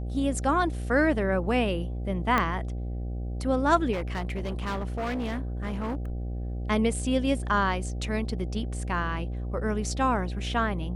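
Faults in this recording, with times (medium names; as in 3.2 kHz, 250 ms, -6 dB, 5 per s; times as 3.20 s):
buzz 60 Hz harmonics 13 -32 dBFS
2.38 s: pop -11 dBFS
3.92–6.10 s: clipped -27 dBFS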